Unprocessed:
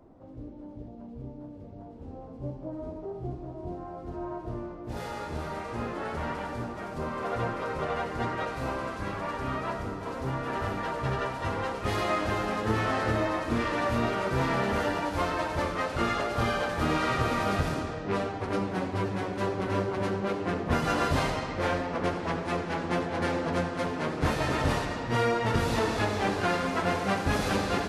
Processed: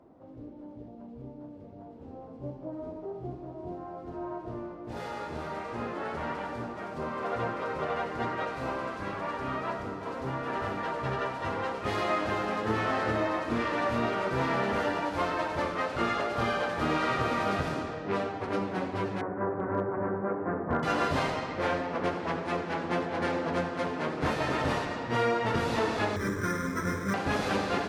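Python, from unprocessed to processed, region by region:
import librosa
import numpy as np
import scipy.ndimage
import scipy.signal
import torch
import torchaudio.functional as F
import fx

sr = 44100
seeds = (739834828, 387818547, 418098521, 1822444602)

y = fx.chain(x, sr, fx.steep_lowpass(hz=1700.0, slope=36),
    fx.clip_hard(threshold_db=-18.5), at=(19.21, 20.83))
y = fx.chain(y, sr, fx.low_shelf(hz=140.0, db=10.0),
    fx.fixed_phaser(hz=2800.0, stages=6),
    fx.resample_bad(factor=6, down='filtered', up='hold'), at=(26.16, 27.14))
y = fx.highpass(y, sr, hz=170.0, slope=6)
y = fx.high_shelf(y, sr, hz=7200.0, db=-11.0)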